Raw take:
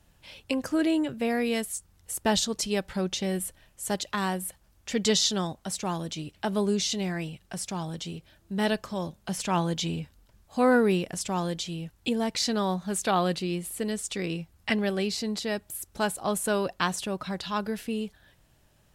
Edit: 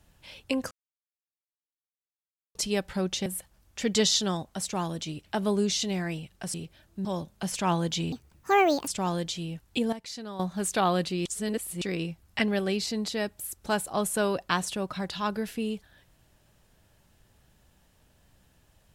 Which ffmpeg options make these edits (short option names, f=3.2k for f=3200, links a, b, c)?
-filter_complex "[0:a]asplit=12[a][b][c][d][e][f][g][h][i][j][k][l];[a]atrim=end=0.71,asetpts=PTS-STARTPTS,afade=t=out:st=0.706:d=0.004:c=hsin[m];[b]atrim=start=0.71:end=2.55,asetpts=PTS-STARTPTS,volume=0[n];[c]atrim=start=2.55:end=3.262,asetpts=PTS-STARTPTS,afade=t=in:d=0.004:c=hsin[o];[d]atrim=start=4.358:end=7.642[p];[e]atrim=start=8.068:end=8.582[q];[f]atrim=start=8.908:end=9.984[r];[g]atrim=start=9.98:end=11.18,asetpts=PTS-STARTPTS,asetrate=70119,aresample=44100,atrim=end_sample=33283,asetpts=PTS-STARTPTS[s];[h]atrim=start=11.176:end=12.232[t];[i]atrim=start=12.228:end=12.702,asetpts=PTS-STARTPTS,volume=-12dB[u];[j]atrim=start=12.698:end=13.562[v];[k]atrim=start=13.558:end=14.122,asetpts=PTS-STARTPTS,areverse[w];[l]atrim=start=14.118[x];[m][n][o]concat=n=3:v=0:a=1[y];[y][p]acrossfade=d=0.004:c1=hsin:c2=hsin[z];[z][q]acrossfade=d=0.004:c1=hsin:c2=hsin[aa];[aa][r]acrossfade=d=0.004:c1=hsin:c2=hsin[ab];[ab][s]acrossfade=d=0.004:c1=hsin:c2=hsin[ac];[ac][t]acrossfade=d=0.004:c1=hsin:c2=hsin[ad];[ad][u]acrossfade=d=0.004:c1=hsin:c2=hsin[ae];[ae][v]acrossfade=d=0.004:c1=hsin:c2=hsin[af];[af][w]acrossfade=d=0.004:c1=hsin:c2=hsin[ag];[ag][x]acrossfade=d=0.004:c1=hsin:c2=hsin"